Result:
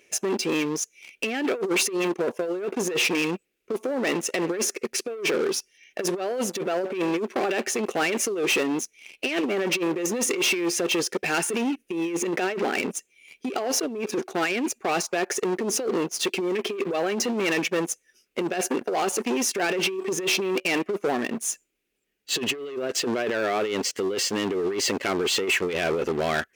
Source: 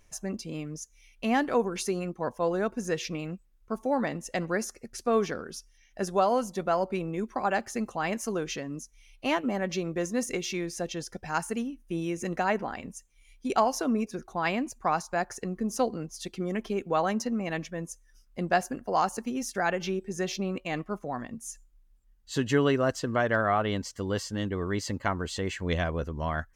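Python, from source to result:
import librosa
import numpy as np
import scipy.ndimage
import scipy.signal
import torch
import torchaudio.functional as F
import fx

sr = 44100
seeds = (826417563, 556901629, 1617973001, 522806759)

y = fx.graphic_eq_15(x, sr, hz=(400, 1000, 2500), db=(12, -9, 12))
y = fx.leveller(y, sr, passes=2)
y = fx.low_shelf(y, sr, hz=450.0, db=2.0, at=(11.8, 14.16))
y = fx.over_compress(y, sr, threshold_db=-21.0, ratio=-0.5)
y = 10.0 ** (-22.5 / 20.0) * np.tanh(y / 10.0 ** (-22.5 / 20.0))
y = scipy.signal.sosfilt(scipy.signal.butter(2, 270.0, 'highpass', fs=sr, output='sos'), y)
y = y * 10.0 ** (3.5 / 20.0)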